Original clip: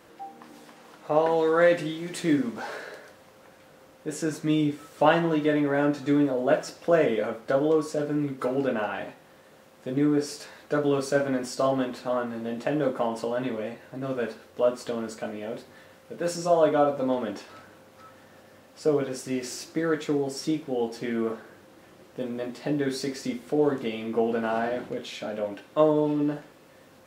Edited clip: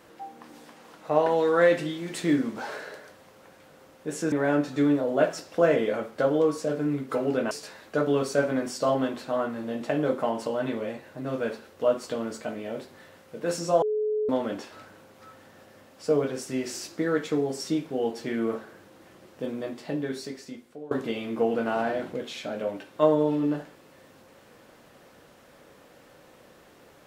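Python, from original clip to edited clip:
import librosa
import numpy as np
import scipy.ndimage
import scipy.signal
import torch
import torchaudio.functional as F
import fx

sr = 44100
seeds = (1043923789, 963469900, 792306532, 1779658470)

y = fx.edit(x, sr, fx.cut(start_s=4.32, length_s=1.3),
    fx.cut(start_s=8.81, length_s=1.47),
    fx.bleep(start_s=16.59, length_s=0.47, hz=427.0, db=-23.5),
    fx.fade_out_to(start_s=22.24, length_s=1.44, floor_db=-22.5), tone=tone)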